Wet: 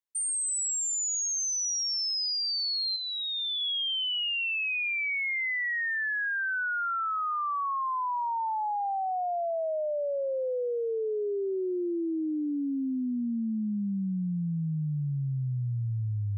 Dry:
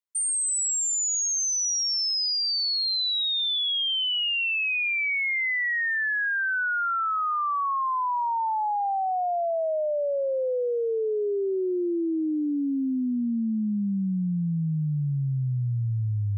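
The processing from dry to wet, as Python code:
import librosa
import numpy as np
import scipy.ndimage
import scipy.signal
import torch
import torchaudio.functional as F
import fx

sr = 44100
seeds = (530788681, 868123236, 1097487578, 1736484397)

y = fx.steep_lowpass(x, sr, hz=3800.0, slope=36, at=(2.96, 3.61))
y = F.gain(torch.from_numpy(y), -4.0).numpy()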